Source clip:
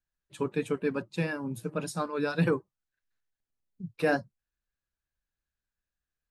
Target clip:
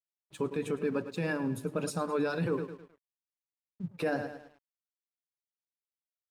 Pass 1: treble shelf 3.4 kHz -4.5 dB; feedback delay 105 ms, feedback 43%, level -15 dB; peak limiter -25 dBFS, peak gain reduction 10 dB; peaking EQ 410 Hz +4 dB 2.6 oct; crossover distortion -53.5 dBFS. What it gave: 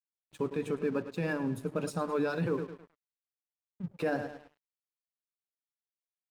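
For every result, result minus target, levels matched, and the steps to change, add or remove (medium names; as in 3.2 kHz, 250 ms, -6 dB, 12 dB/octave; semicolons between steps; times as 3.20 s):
crossover distortion: distortion +7 dB; 8 kHz band -4.5 dB
change: crossover distortion -60.5 dBFS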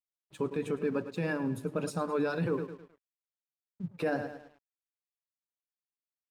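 8 kHz band -4.0 dB
remove: treble shelf 3.4 kHz -4.5 dB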